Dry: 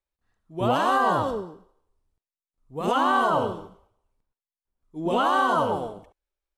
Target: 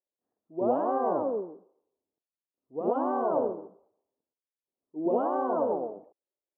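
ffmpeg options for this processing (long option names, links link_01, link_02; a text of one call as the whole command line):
ffmpeg -i in.wav -af "asuperpass=centerf=430:order=4:qfactor=0.93,aemphasis=mode=reproduction:type=75kf" out.wav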